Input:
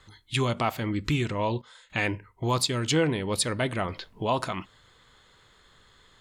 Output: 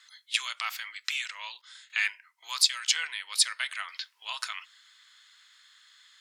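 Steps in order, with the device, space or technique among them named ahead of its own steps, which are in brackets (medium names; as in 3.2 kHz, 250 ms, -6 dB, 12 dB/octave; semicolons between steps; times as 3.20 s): headphones lying on a table (high-pass 1.5 kHz 24 dB/octave; peaking EQ 5.3 kHz +6 dB 0.53 oct); trim +2 dB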